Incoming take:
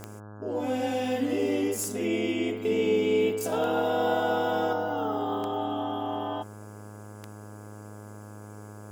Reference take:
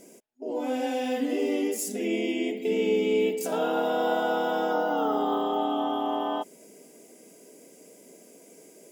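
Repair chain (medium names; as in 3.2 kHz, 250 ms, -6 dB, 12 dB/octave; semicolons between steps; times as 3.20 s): de-click; de-hum 104.6 Hz, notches 16; gain correction +3.5 dB, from 4.73 s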